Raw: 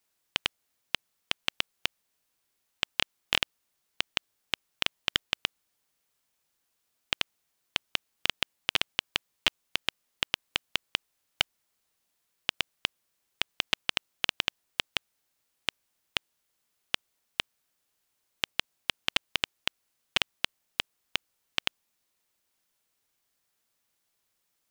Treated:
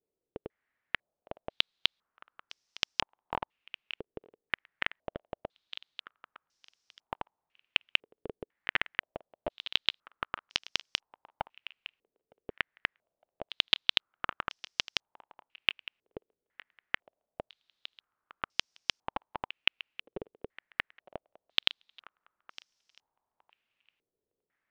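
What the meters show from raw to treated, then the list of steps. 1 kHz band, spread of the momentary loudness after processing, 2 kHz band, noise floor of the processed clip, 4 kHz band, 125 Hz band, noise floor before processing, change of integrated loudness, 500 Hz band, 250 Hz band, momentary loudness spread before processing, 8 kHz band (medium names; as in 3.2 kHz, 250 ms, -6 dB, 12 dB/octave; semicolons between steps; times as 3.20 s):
0.0 dB, 20 LU, -1.5 dB, under -85 dBFS, -2.5 dB, -4.0 dB, -78 dBFS, -1.0 dB, +1.0 dB, -2.5 dB, 6 LU, -6.5 dB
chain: thinning echo 910 ms, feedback 23%, high-pass 430 Hz, level -17 dB; step-sequenced low-pass 2 Hz 440–5500 Hz; trim -4 dB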